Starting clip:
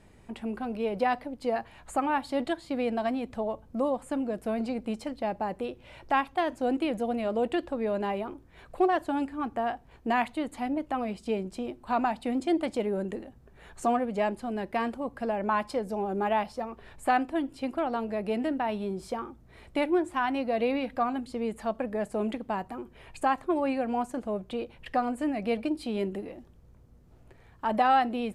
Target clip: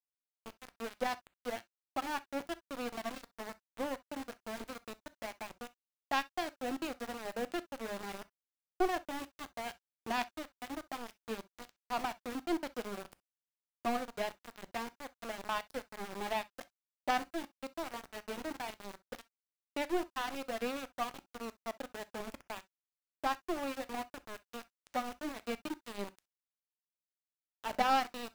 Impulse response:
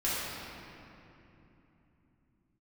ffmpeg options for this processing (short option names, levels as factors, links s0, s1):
-filter_complex "[0:a]lowpass=8400,bandreject=f=105.4:t=h:w=4,bandreject=f=210.8:t=h:w=4,aeval=exprs='0.251*(cos(1*acos(clip(val(0)/0.251,-1,1)))-cos(1*PI/2))+0.0282*(cos(2*acos(clip(val(0)/0.251,-1,1)))-cos(2*PI/2))+0.0501*(cos(3*acos(clip(val(0)/0.251,-1,1)))-cos(3*PI/2))+0.00282*(cos(7*acos(clip(val(0)/0.251,-1,1)))-cos(7*PI/2))':c=same,bass=f=250:g=1,treble=f=4000:g=8,aeval=exprs='val(0)*gte(abs(val(0)),0.0168)':c=same,asplit=2[s0][s1];[1:a]atrim=start_sample=2205,atrim=end_sample=3087[s2];[s1][s2]afir=irnorm=-1:irlink=0,volume=0.126[s3];[s0][s3]amix=inputs=2:normalize=0,volume=0.668"